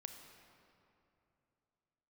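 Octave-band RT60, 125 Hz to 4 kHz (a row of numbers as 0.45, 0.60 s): 3.3, 3.0, 3.0, 2.8, 2.3, 1.7 s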